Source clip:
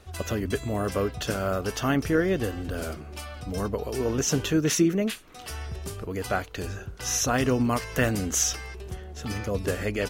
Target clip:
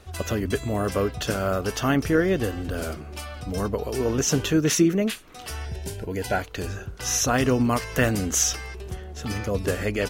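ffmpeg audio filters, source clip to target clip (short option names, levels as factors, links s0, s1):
-filter_complex "[0:a]asettb=1/sr,asplit=3[s0][s1][s2];[s0]atrim=end=5.654[s3];[s1]atrim=start=5.65:end=6.39,asetpts=PTS-STARTPTS,afade=t=in:d=0.004:c=qsin,afade=t=out:st=0.736:d=0.004:c=qsin,asuperstop=centerf=1200:order=20:qfactor=4.4[s4];[s2]atrim=start=6.386[s5];[s3][s4]acrossfade=d=0.004:c1=hsin:c2=qsin[s6];[s6][s5]acrossfade=d=0.004:c1=qsin:c2=hsin,volume=1.33"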